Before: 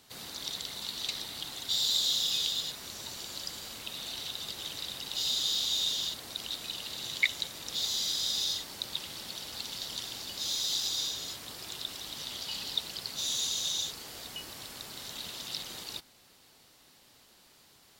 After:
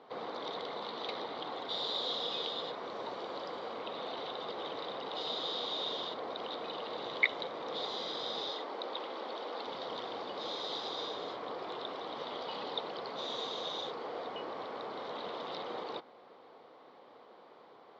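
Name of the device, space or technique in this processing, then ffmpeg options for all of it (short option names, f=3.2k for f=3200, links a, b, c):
phone earpiece: -filter_complex "[0:a]highpass=480,equalizer=f=480:t=q:w=4:g=7,equalizer=f=750:t=q:w=4:g=3,equalizer=f=1.1k:t=q:w=4:g=6,equalizer=f=1.7k:t=q:w=4:g=-4,equalizer=f=2.7k:t=q:w=4:g=-9,lowpass=f=3.2k:w=0.5412,lowpass=f=3.2k:w=1.3066,asettb=1/sr,asplit=3[a][b][c];[a]atrim=end=8.494[d];[b]atrim=start=8.49:end=9.67,asetpts=PTS-STARTPTS,afade=t=in:d=0.004:c=qsin,afade=t=out:st=1.176:d=0.004:c=qsin,highpass=f=230:w=0.5412,highpass=f=230:w=1.3066[e];[c]atrim=start=9.666[f];[d][e]acrossfade=d=0.004:c1=hsin:c2=qsin[g];[g][f]acrossfade=d=0.004:c1=qsin:c2=hsin,tiltshelf=f=970:g=8.5,volume=7.5dB"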